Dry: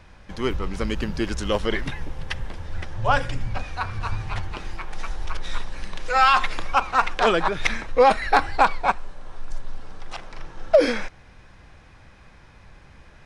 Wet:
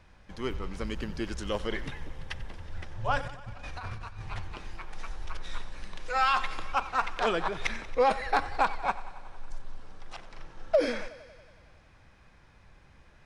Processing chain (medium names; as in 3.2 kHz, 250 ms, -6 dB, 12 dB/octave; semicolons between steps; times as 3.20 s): 3.21–4.22 s: compressor with a negative ratio -31 dBFS, ratio -1; on a send: thinning echo 92 ms, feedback 74%, high-pass 250 Hz, level -17 dB; on the sum: trim -8.5 dB